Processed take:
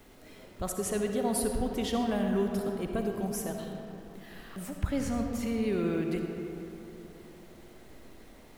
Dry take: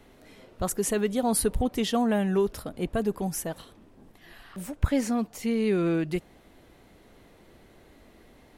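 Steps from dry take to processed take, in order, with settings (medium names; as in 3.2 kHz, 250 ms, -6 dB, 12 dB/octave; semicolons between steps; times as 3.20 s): in parallel at +1.5 dB: compression, threshold -38 dBFS, peak gain reduction 20 dB; on the sum: bit crusher 9-bit; algorithmic reverb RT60 3.3 s, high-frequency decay 0.45×, pre-delay 25 ms, DRR 2.5 dB; trim -8 dB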